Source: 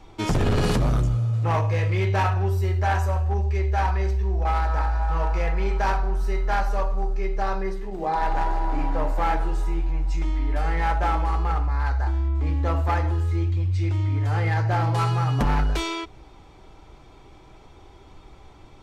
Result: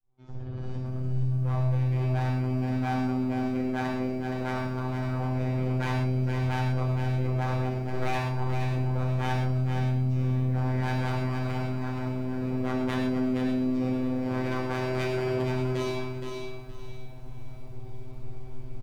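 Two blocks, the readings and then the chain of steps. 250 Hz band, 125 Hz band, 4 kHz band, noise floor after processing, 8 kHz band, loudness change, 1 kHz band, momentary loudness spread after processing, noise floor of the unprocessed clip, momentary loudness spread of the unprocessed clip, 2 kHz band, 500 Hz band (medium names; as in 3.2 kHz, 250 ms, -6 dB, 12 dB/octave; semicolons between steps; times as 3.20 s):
+3.5 dB, -3.5 dB, -5.0 dB, -36 dBFS, no reading, -4.5 dB, -9.0 dB, 17 LU, -48 dBFS, 5 LU, -5.0 dB, -2.0 dB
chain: fade-in on the opening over 5.81 s; low-pass 6.4 kHz; reverb removal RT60 1.2 s; tilt EQ -3 dB/octave; in parallel at +2.5 dB: peak limiter -11.5 dBFS, peak gain reduction 8 dB; on the sum: compression 12:1, threshold -10 dBFS, peak gain reduction 8 dB; wavefolder -17.5 dBFS; robot voice 128 Hz; feedback comb 110 Hz, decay 1.1 s, harmonics all, mix 70%; feedback delay 469 ms, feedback 23%, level -6 dB; gated-style reverb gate 150 ms flat, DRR 0 dB; bit-crushed delay 568 ms, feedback 35%, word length 9-bit, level -14 dB; trim +1 dB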